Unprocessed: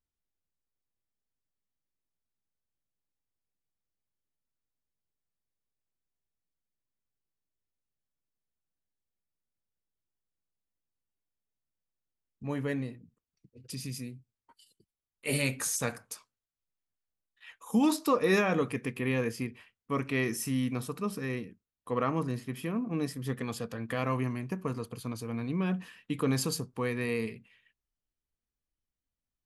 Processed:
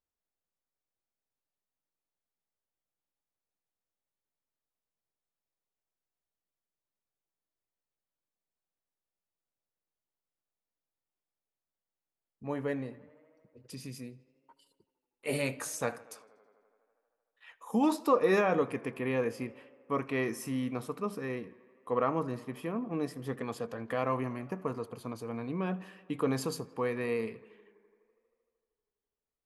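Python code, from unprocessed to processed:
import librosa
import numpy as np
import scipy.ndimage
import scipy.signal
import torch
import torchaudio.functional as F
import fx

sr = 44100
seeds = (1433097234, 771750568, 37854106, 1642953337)

y = fx.peak_eq(x, sr, hz=690.0, db=11.0, octaves=2.7)
y = fx.echo_tape(y, sr, ms=80, feedback_pct=83, wet_db=-22, lp_hz=4600.0, drive_db=2.0, wow_cents=40)
y = y * 10.0 ** (-8.0 / 20.0)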